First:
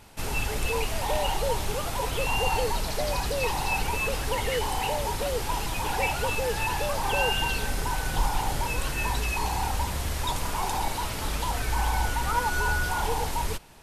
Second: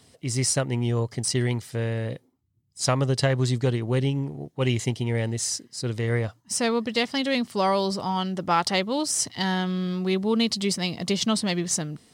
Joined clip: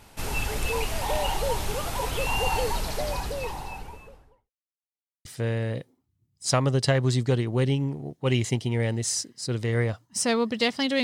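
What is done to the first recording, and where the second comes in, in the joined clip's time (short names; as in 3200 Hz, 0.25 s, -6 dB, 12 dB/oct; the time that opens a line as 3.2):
first
2.68–4.51 studio fade out
4.51–5.25 mute
5.25 switch to second from 1.6 s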